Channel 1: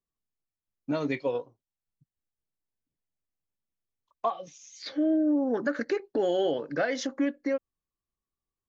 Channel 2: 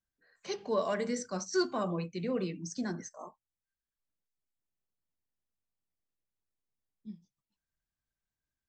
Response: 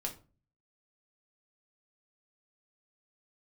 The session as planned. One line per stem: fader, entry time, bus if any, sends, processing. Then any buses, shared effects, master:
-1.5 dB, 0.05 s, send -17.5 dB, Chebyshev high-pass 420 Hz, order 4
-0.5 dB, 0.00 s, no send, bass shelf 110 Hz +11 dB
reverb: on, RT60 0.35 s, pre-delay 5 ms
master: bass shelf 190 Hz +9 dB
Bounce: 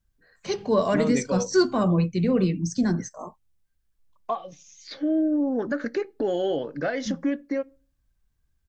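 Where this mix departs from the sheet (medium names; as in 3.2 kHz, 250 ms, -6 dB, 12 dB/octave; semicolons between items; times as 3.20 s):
stem 1: missing Chebyshev high-pass 420 Hz, order 4; stem 2 -0.5 dB -> +7.0 dB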